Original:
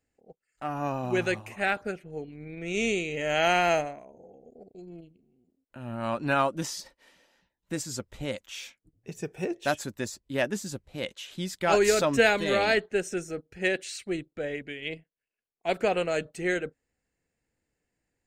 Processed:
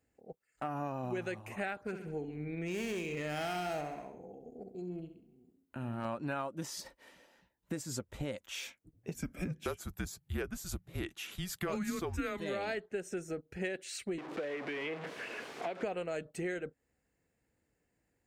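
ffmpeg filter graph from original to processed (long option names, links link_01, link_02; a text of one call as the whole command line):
ffmpeg -i in.wav -filter_complex "[0:a]asettb=1/sr,asplit=3[link_01][link_02][link_03];[link_01]atrim=end=1.854[link_04];[link_02]atrim=start=1.85:end=6.05,asetpts=PTS-STARTPTS,afade=type=in:duration=0.004:curve=qsin,afade=type=out:start_time=4.196:duration=0.004:curve=qsin,equalizer=frequency=570:width=4.2:gain=-6.5,volume=27dB,asoftclip=hard,volume=-27dB,aecho=1:1:67|134|201|268|335:0.299|0.134|0.0605|0.0272|0.0122,atrim=end_sample=185220[link_05];[link_03]atrim=start=6.046[link_06];[link_04][link_05]acrossfade=duration=0.004:curve1=hsin:curve2=qsin[link_07];[link_07][link_06]acrossfade=duration=0.004:curve1=qsin:curve2=hsin,asettb=1/sr,asplit=3[link_08][link_09][link_10];[link_08]atrim=end=9.144[link_11];[link_09]atrim=start=9.14:end=12.4,asetpts=PTS-STARTPTS,afade=type=in:duration=0.004:curve=qsin,afade=type=out:start_time=3.256:duration=0.004:curve=qsin,equalizer=frequency=12000:width_type=o:width=0.31:gain=8.5,afreqshift=-190[link_12];[link_10]atrim=start=12.396[link_13];[link_11][link_12]acrossfade=duration=0.004:curve1=hsin:curve2=qsin[link_14];[link_14][link_13]acrossfade=duration=0.004:curve1=qsin:curve2=hsin,asettb=1/sr,asplit=3[link_15][link_16][link_17];[link_15]atrim=end=14.184[link_18];[link_16]atrim=start=14.18:end=15.83,asetpts=PTS-STARTPTS,afade=type=in:duration=0.004:curve=qsin,afade=type=out:start_time=1.646:duration=0.004:curve=qsin,aeval=exprs='val(0)+0.5*0.0251*sgn(val(0))':channel_layout=same,highpass=240,lowpass=4000,acrossover=split=400|2400[link_19][link_20][link_21];[link_19]acompressor=threshold=-45dB:ratio=4[link_22];[link_20]acompressor=threshold=-34dB:ratio=4[link_23];[link_21]acompressor=threshold=-47dB:ratio=4[link_24];[link_22][link_23][link_24]amix=inputs=3:normalize=0[link_25];[link_17]atrim=start=15.826[link_26];[link_18][link_25]acrossfade=duration=0.004:curve1=hsin:curve2=qsin[link_27];[link_27][link_26]acrossfade=duration=0.004:curve1=qsin:curve2=hsin,highpass=42,equalizer=frequency=4600:width_type=o:width=2.2:gain=-5.5,acompressor=threshold=-38dB:ratio=6,volume=3dB" out.wav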